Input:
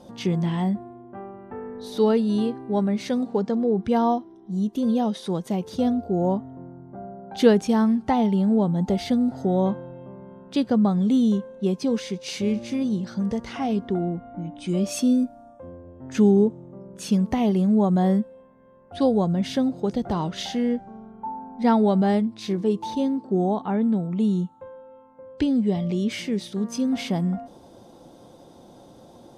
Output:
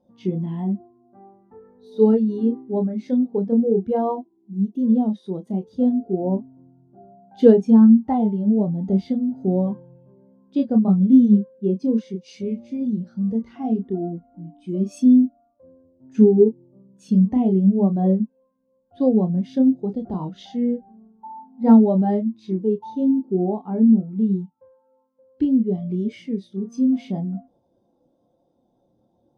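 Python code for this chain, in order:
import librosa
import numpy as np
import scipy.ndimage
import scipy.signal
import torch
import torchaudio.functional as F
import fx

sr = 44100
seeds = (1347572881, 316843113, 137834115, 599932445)

y = fx.dynamic_eq(x, sr, hz=330.0, q=1.2, threshold_db=-32.0, ratio=4.0, max_db=3)
y = fx.chorus_voices(y, sr, voices=4, hz=0.34, base_ms=29, depth_ms=2.7, mix_pct=35)
y = fx.spectral_expand(y, sr, expansion=1.5)
y = F.gain(torch.from_numpy(y), 4.5).numpy()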